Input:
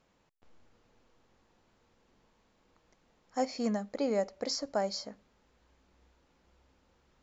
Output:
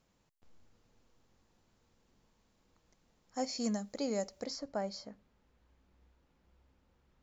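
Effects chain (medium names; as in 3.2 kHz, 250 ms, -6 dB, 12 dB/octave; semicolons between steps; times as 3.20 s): tone controls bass +6 dB, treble +7 dB, from 3.44 s treble +15 dB, from 4.44 s treble -3 dB; trim -6 dB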